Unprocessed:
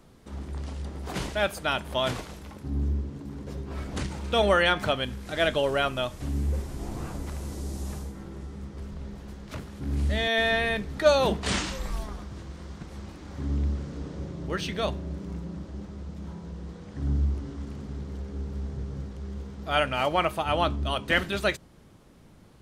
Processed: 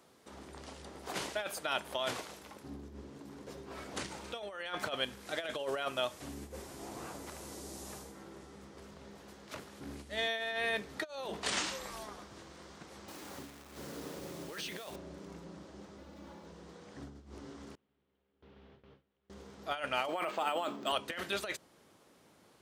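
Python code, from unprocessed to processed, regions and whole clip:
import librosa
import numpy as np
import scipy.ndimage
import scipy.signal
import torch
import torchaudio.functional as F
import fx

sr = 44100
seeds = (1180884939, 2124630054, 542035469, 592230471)

y = fx.chain(x, sr, fx.highpass(hz=83.0, slope=6),
    fx.over_compress(threshold_db=-36.0, ratio=-1.0),
    fx.quant_dither(seeds[0], bits=8, dither='none'), at=(13.08, 14.96))
y = fx.chain(y, sr, fx.median_filter(points=5),
    fx.high_shelf(hz=8500.0, db=-4.5),
    fx.comb(ms=3.5, depth=0.59), at=(15.98, 16.47))
y = fx.chain(y, sr, fx.gate_hold(open_db=-25.0, close_db=-31.0, hold_ms=71.0, range_db=-21, attack_ms=1.4, release_ms=100.0),
    fx.ladder_lowpass(hz=3600.0, resonance_pct=45), at=(17.75, 19.3))
y = fx.chain(y, sr, fx.highpass(hz=180.0, slope=24),
    fx.over_compress(threshold_db=-29.0, ratio=-1.0),
    fx.resample_linear(factor=4), at=(20.08, 20.92))
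y = fx.over_compress(y, sr, threshold_db=-27.0, ratio=-0.5)
y = scipy.signal.sosfilt(scipy.signal.butter(2, 81.0, 'highpass', fs=sr, output='sos'), y)
y = fx.bass_treble(y, sr, bass_db=-14, treble_db=2)
y = y * 10.0 ** (-5.5 / 20.0)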